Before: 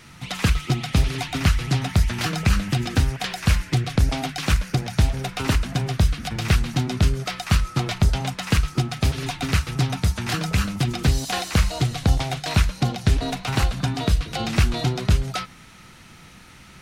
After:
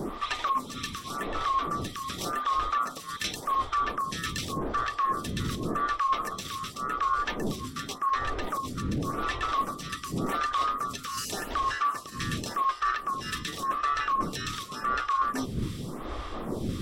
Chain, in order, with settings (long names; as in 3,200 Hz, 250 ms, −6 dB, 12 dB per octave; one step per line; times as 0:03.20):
neighbouring bands swapped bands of 1,000 Hz
wind on the microphone 290 Hz −28 dBFS
brickwall limiter −13.5 dBFS, peak gain reduction 10 dB
reversed playback
downward compressor 10 to 1, threshold −29 dBFS, peak gain reduction 12 dB
reversed playback
phaser with staggered stages 0.88 Hz
level +5.5 dB